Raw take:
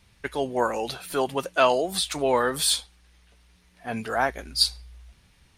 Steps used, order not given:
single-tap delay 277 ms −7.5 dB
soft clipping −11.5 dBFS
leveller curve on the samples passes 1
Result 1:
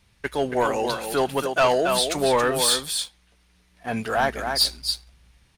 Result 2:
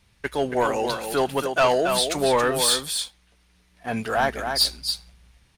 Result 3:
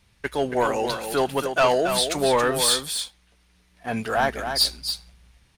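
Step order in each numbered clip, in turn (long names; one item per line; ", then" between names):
single-tap delay, then leveller curve on the samples, then soft clipping
leveller curve on the samples, then single-tap delay, then soft clipping
leveller curve on the samples, then soft clipping, then single-tap delay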